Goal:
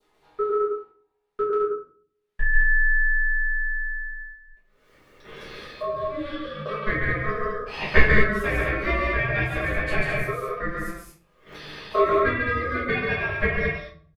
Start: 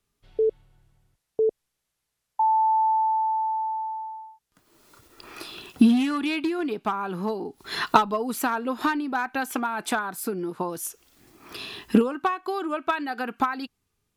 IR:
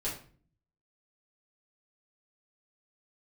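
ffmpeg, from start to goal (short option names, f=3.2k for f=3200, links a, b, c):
-filter_complex "[0:a]bass=f=250:g=-8,treble=f=4k:g=-14,agate=range=-23dB:threshold=-47dB:ratio=16:detection=peak,acompressor=mode=upward:threshold=-35dB:ratio=2.5,asplit=2[a][b];[b]adelay=13,volume=-7.5dB[c];[a][c]amix=inputs=2:normalize=0,aecho=1:1:139.9|209.9:0.708|0.631,aeval=exprs='val(0)*sin(2*PI*860*n/s)':c=same,asettb=1/sr,asplit=3[d][e][f];[d]atrim=end=4.114[g];[e]atrim=start=4.11:end=6.66,asetpts=PTS-STARTPTS,afade=t=in:d=0.004:c=qsin,afade=t=out:st=2.546:d=0.004:c=qsin,acrossover=split=470[h][i];[i]acompressor=threshold=-35dB:ratio=6[j];[h][j]amix=inputs=2:normalize=0[k];[f]atrim=start=6.656[l];[g][k]acrossfade=d=0.004:c1=hsin:c2=qsin[m];[m][l]acrossfade=d=0.004:c1=qsin:c2=hsin[n];[1:a]atrim=start_sample=2205[o];[n][o]afir=irnorm=-1:irlink=0,adynamicequalizer=threshold=0.0158:dfrequency=2000:dqfactor=0.99:tfrequency=2000:tqfactor=0.99:attack=5:release=100:ratio=0.375:range=2:mode=boostabove:tftype=bell,volume=-3.5dB"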